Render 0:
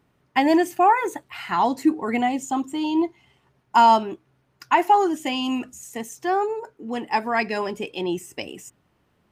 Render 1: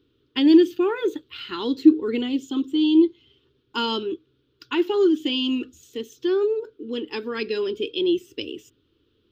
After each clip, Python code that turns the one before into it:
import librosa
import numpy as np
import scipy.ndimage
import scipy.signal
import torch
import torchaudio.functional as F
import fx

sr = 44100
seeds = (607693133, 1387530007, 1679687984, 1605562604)

y = fx.curve_eq(x, sr, hz=(110.0, 170.0, 300.0, 470.0, 690.0, 1400.0, 2000.0, 3400.0, 9900.0, 15000.0), db=(0, -13, 6, 4, -26, -4, -13, 10, -23, -5))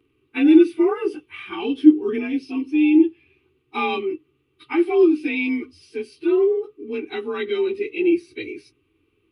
y = fx.partial_stretch(x, sr, pct=91)
y = y + 0.38 * np.pad(y, (int(2.6 * sr / 1000.0), 0))[:len(y)]
y = F.gain(torch.from_numpy(y), 2.0).numpy()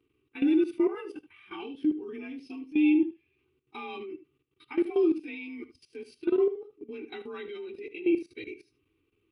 y = fx.level_steps(x, sr, step_db=17)
y = y + 10.0 ** (-14.0 / 20.0) * np.pad(y, (int(76 * sr / 1000.0), 0))[:len(y)]
y = F.gain(torch.from_numpy(y), -5.0).numpy()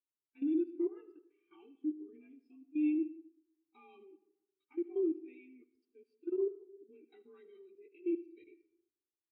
y = fx.rev_freeverb(x, sr, rt60_s=1.2, hf_ratio=0.4, predelay_ms=60, drr_db=11.5)
y = fx.spectral_expand(y, sr, expansion=1.5)
y = F.gain(torch.from_numpy(y), -8.5).numpy()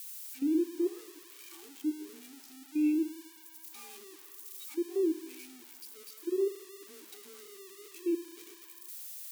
y = x + 0.5 * 10.0 ** (-39.0 / 20.0) * np.diff(np.sign(x), prepend=np.sign(x[:1]))
y = F.gain(torch.from_numpy(y), 3.5).numpy()